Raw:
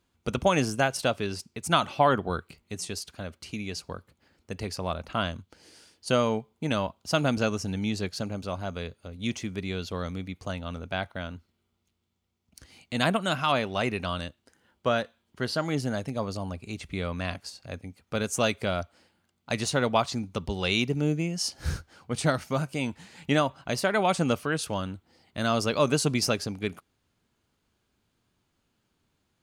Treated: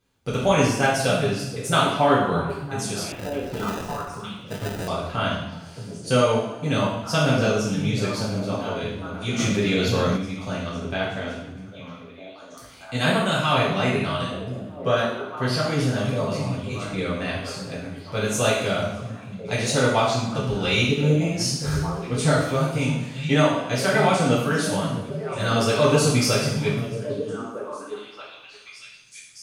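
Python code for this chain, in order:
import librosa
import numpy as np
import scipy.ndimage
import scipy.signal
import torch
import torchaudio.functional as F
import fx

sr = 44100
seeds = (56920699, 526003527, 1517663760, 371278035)

p1 = fx.rev_double_slope(x, sr, seeds[0], early_s=0.73, late_s=2.0, knee_db=-18, drr_db=-7.5)
p2 = fx.sample_hold(p1, sr, seeds[1], rate_hz=1100.0, jitter_pct=0, at=(3.12, 4.88))
p3 = p2 + fx.echo_stepped(p2, sr, ms=628, hz=150.0, octaves=1.4, feedback_pct=70, wet_db=-4.0, dry=0)
p4 = fx.env_flatten(p3, sr, amount_pct=50, at=(9.38, 10.16), fade=0.02)
y = p4 * 10.0 ** (-3.0 / 20.0)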